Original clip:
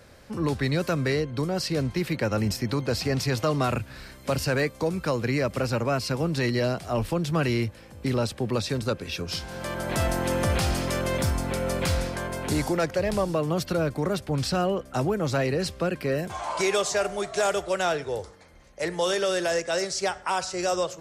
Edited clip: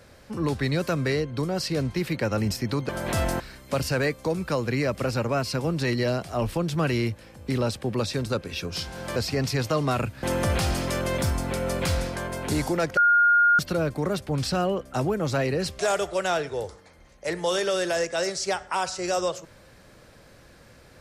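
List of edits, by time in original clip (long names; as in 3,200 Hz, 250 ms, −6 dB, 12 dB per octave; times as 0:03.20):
0:02.89–0:03.96: swap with 0:09.72–0:10.23
0:12.97–0:13.59: beep over 1,420 Hz −15 dBFS
0:15.79–0:17.34: remove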